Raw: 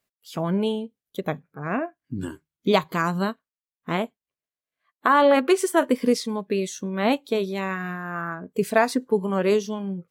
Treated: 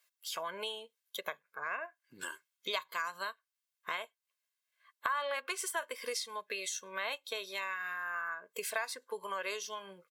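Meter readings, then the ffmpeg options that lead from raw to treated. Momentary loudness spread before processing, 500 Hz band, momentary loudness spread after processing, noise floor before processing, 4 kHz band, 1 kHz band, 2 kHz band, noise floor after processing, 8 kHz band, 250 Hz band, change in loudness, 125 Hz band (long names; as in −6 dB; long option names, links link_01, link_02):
13 LU, −19.5 dB, 9 LU, below −85 dBFS, −5.5 dB, −13.5 dB, −7.5 dB, below −85 dBFS, −4.0 dB, −33.0 dB, −14.0 dB, below −35 dB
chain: -af "highpass=1200,aecho=1:1:1.9:0.52,acompressor=threshold=-44dB:ratio=3,volume=5.5dB"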